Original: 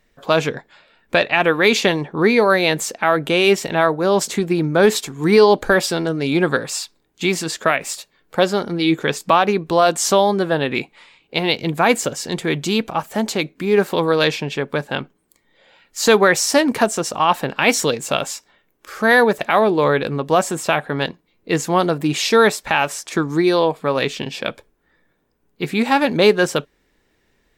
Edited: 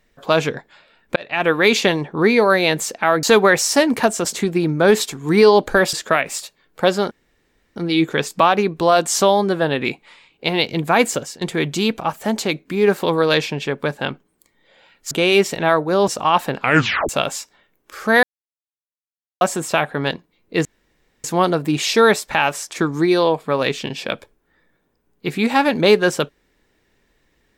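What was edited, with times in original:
1.16–1.51 fade in
3.23–4.2 swap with 16.01–17.03
5.88–7.48 cut
8.66 insert room tone 0.65 s
11.98–12.31 fade out equal-power, to -20.5 dB
17.54 tape stop 0.50 s
19.18–20.36 mute
21.6 insert room tone 0.59 s

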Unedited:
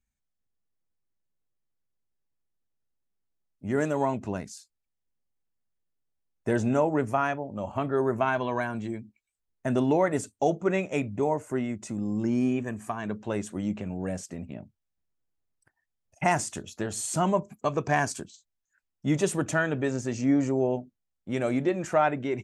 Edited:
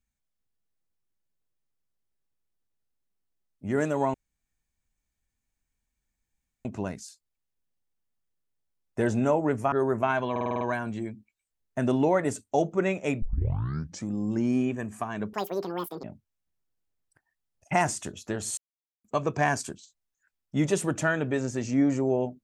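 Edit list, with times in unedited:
4.14 insert room tone 2.51 s
7.21–7.9 cut
8.49 stutter 0.05 s, 7 plays
11.1 tape start 0.86 s
13.21–14.54 speed 189%
17.08–17.55 mute

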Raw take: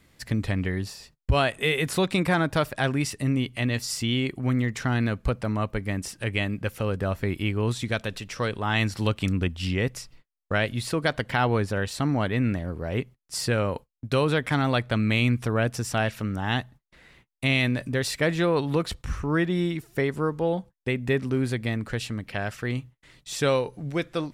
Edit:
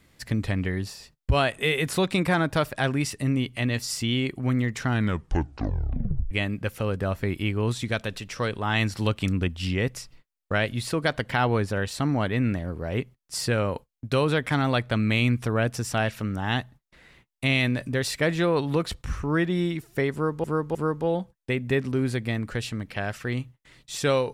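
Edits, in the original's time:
4.91 tape stop 1.40 s
20.13–20.44 loop, 3 plays

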